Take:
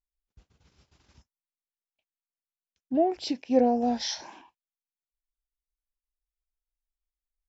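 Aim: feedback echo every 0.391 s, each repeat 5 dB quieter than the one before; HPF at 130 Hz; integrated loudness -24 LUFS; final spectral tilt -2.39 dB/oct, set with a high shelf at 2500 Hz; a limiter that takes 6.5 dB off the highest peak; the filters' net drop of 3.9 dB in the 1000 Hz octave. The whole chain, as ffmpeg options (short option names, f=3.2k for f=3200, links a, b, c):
-af "highpass=130,equalizer=f=1k:t=o:g=-8.5,highshelf=f=2.5k:g=8.5,alimiter=limit=-18dB:level=0:latency=1,aecho=1:1:391|782|1173|1564|1955|2346|2737:0.562|0.315|0.176|0.0988|0.0553|0.031|0.0173,volume=5.5dB"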